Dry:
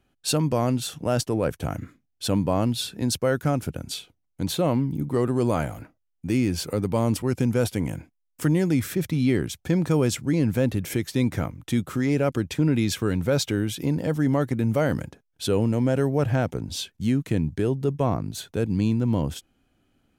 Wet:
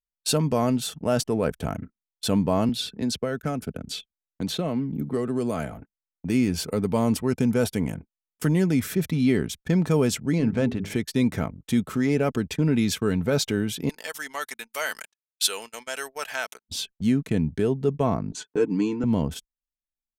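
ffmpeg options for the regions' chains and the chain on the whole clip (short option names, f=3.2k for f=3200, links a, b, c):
-filter_complex "[0:a]asettb=1/sr,asplit=3[a][b][c];[a]atrim=end=2.694[d];[b]atrim=start=2.69:end=5.72,asetpts=PTS-STARTPTS,afade=t=in:d=0.004:c=qsin,afade=t=out:st=3.026:d=0.004:c=qsin,acrossover=split=170|6500[e][f][g];[e]acompressor=threshold=-35dB:ratio=4[h];[f]acompressor=threshold=-24dB:ratio=4[i];[g]acompressor=threshold=-45dB:ratio=4[j];[h][i][j]amix=inputs=3:normalize=0,equalizer=f=930:w=4.7:g=-6[k];[c]atrim=start=5.716[l];[d][k]acrossfade=d=0.004:c1=hsin:c2=qsin[m];[m][l]acrossfade=d=0.004:c1=qsin:c2=hsin,asettb=1/sr,asplit=3[n][o][p];[n]atrim=end=10.384[q];[o]atrim=start=10.38:end=10.95,asetpts=PTS-STARTPTS,afade=t=in:d=0.004:c=qsin,afade=t=out:st=0.566:d=0.004:c=qsin,adynamicsmooth=sensitivity=7.5:basefreq=4.4k,bandreject=f=50:t=h:w=6,bandreject=f=100:t=h:w=6,bandreject=f=150:t=h:w=6,bandreject=f=200:t=h:w=6,bandreject=f=250:t=h:w=6,bandreject=f=300:t=h:w=6,bandreject=f=350:t=h:w=6,bandreject=f=400:t=h:w=6,bandreject=f=450:t=h:w=6[r];[p]atrim=start=10.946[s];[q][r]acrossfade=d=0.004:c1=hsin:c2=qsin[t];[t][s]acrossfade=d=0.004:c1=qsin:c2=hsin,asettb=1/sr,asplit=3[u][v][w];[u]atrim=end=13.894[x];[v]atrim=start=13.89:end=16.69,asetpts=PTS-STARTPTS,afade=t=in:d=0.004:c=qsin,afade=t=out:st=2.796:d=0.004:c=qsin,highpass=1.1k,highshelf=f=2k:g=11[y];[w]atrim=start=16.686[z];[x][y]acrossfade=d=0.004:c1=hsin:c2=qsin[aa];[aa][z]acrossfade=d=0.004:c1=qsin:c2=hsin,asettb=1/sr,asplit=3[ab][ac][ad];[ab]atrim=end=18.324[ae];[ac]atrim=start=18.32:end=19.04,asetpts=PTS-STARTPTS,afade=t=in:d=0.004:c=qsin,afade=t=out:st=0.716:d=0.004:c=qsin,highpass=f=180:w=0.5412,highpass=f=180:w=1.3066,equalizer=f=180:t=q:w=4:g=-4,equalizer=f=330:t=q:w=4:g=7,equalizer=f=620:t=q:w=4:g=-9,equalizer=f=1k:t=q:w=4:g=6,equalizer=f=3.8k:t=q:w=4:g=-10,equalizer=f=7.2k:t=q:w=4:g=3,lowpass=f=7.5k:w=0.5412,lowpass=f=7.5k:w=1.3066,aecho=1:1:6.7:0.66,atrim=end_sample=31752[af];[ad]atrim=start=19.036[ag];[ae][af]acrossfade=d=0.004:c1=hsin:c2=qsin[ah];[ah][ag]acrossfade=d=0.004:c1=qsin:c2=hsin,anlmdn=0.251,aecho=1:1:4.6:0.38,agate=range=-23dB:threshold=-39dB:ratio=16:detection=peak"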